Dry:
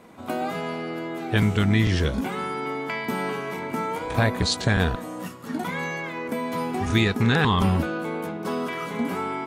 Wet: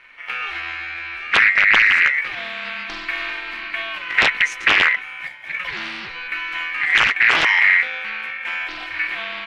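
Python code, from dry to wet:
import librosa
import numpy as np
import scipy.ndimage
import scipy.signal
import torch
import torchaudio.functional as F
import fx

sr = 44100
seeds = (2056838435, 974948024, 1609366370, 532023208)

y = fx.tilt_eq(x, sr, slope=-3.0)
y = y * np.sin(2.0 * np.pi * 2000.0 * np.arange(len(y)) / sr)
y = fx.high_shelf(y, sr, hz=11000.0, db=-5.5)
y = fx.notch(y, sr, hz=1700.0, q=11.0)
y = fx.doppler_dist(y, sr, depth_ms=0.86)
y = y * 10.0 ** (1.5 / 20.0)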